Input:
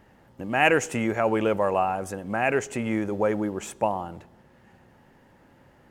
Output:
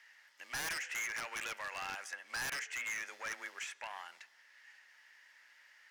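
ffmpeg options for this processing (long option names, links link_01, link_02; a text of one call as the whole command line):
ffmpeg -i in.wav -filter_complex "[0:a]equalizer=frequency=5300:width=1.3:gain=11.5,acrossover=split=3000[link_01][link_02];[link_02]acompressor=threshold=-46dB:ratio=6[link_03];[link_01][link_03]amix=inputs=2:normalize=0,alimiter=limit=-16dB:level=0:latency=1:release=133,afreqshift=24,aeval=exprs='0.2*(cos(1*acos(clip(val(0)/0.2,-1,1)))-cos(1*PI/2))+0.00708*(cos(6*acos(clip(val(0)/0.2,-1,1)))-cos(6*PI/2))':channel_layout=same,highpass=frequency=1900:width_type=q:width=3,aeval=exprs='0.0398*(abs(mod(val(0)/0.0398+3,4)-2)-1)':channel_layout=same,volume=-5dB" out.wav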